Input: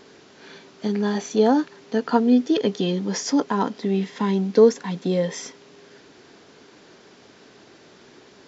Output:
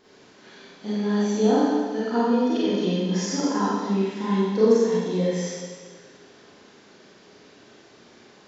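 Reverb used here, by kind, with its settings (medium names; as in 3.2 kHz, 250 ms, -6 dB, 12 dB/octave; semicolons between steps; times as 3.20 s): Schroeder reverb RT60 1.5 s, combs from 30 ms, DRR -9.5 dB; trim -11 dB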